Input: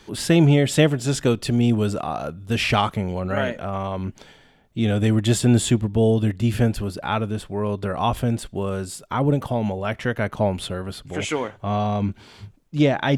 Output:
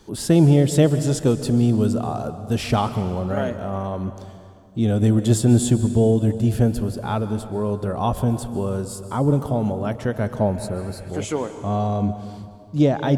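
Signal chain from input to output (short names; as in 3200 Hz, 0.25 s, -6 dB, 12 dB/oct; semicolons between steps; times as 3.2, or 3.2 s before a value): reverb RT60 2.2 s, pre-delay 0.122 s, DRR 11 dB; spectral repair 10.56–11.07, 1500–3700 Hz before; bell 2300 Hz -12 dB 1.6 oct; gain +1.5 dB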